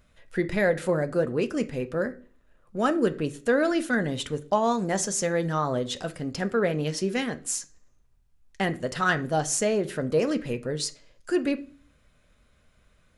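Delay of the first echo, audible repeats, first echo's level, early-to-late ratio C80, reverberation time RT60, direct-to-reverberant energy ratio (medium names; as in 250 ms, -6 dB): no echo, no echo, no echo, 23.5 dB, 0.45 s, 8.0 dB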